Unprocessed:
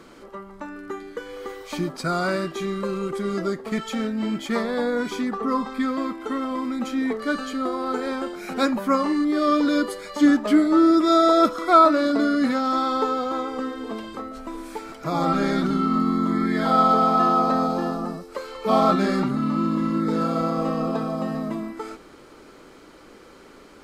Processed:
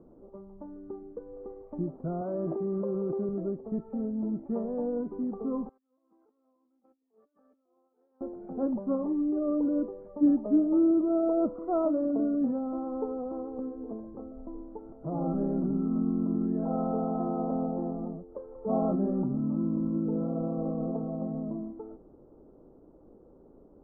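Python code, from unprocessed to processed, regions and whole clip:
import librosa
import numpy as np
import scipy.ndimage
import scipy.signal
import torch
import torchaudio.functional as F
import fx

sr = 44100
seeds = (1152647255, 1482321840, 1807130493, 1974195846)

y = fx.chain(x, sr, fx.highpass(hz=300.0, slope=6),
    fx.peak_eq(hz=670.0, db=4.5, octaves=0.2),
    fx.env_flatten(amount_pct=100), at=(2.21, 3.29))
y = fx.chain(y, sr, fx.over_compress(threshold_db=-32.0, ratio=-0.5),
    fx.bandpass_q(hz=6200.0, q=1.4), at=(5.69, 8.21))
y = scipy.signal.sosfilt(scipy.signal.cheby2(4, 70, 3300.0, 'lowpass', fs=sr, output='sos'), y)
y = fx.low_shelf(y, sr, hz=180.0, db=6.0)
y = y * 10.0 ** (-8.0 / 20.0)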